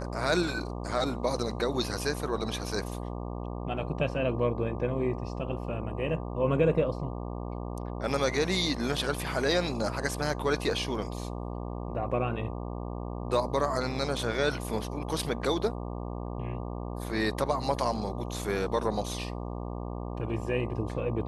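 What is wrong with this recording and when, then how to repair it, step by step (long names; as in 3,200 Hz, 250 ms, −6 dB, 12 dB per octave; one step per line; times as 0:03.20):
mains buzz 60 Hz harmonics 20 −36 dBFS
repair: hum removal 60 Hz, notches 20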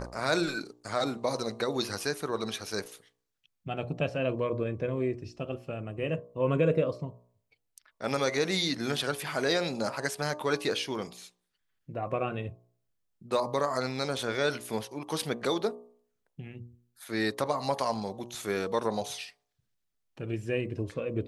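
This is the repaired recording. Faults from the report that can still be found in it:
none of them is left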